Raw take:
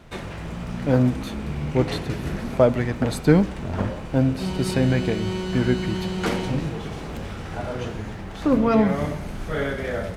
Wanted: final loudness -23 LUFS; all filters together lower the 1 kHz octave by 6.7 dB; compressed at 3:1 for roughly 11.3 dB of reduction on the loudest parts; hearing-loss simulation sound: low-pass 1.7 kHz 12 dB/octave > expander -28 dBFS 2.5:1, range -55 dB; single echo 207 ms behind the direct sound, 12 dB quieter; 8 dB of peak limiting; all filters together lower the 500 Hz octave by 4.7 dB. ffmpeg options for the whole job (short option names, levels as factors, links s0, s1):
-af "equalizer=f=500:t=o:g=-4,equalizer=f=1000:t=o:g=-7,acompressor=threshold=0.0398:ratio=3,alimiter=limit=0.075:level=0:latency=1,lowpass=1700,aecho=1:1:207:0.251,agate=range=0.00178:threshold=0.0398:ratio=2.5,volume=3.76"